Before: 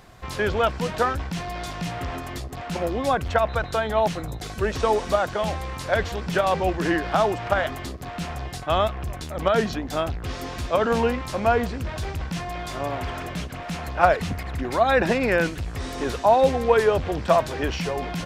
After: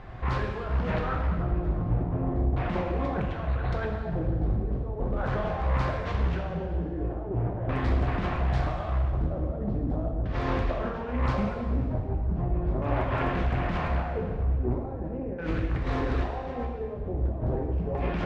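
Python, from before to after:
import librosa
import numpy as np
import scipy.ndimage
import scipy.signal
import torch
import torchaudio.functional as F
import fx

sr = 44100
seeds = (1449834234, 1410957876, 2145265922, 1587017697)

y = fx.low_shelf(x, sr, hz=100.0, db=9.0)
y = fx.over_compress(y, sr, threshold_db=-29.0, ratio=-1.0)
y = fx.filter_lfo_lowpass(y, sr, shape='square', hz=0.39, low_hz=530.0, high_hz=2100.0, q=0.78)
y = fx.rev_plate(y, sr, seeds[0], rt60_s=1.7, hf_ratio=0.95, predelay_ms=0, drr_db=-0.5)
y = fx.doppler_dist(y, sr, depth_ms=0.4)
y = F.gain(torch.from_numpy(y), -3.0).numpy()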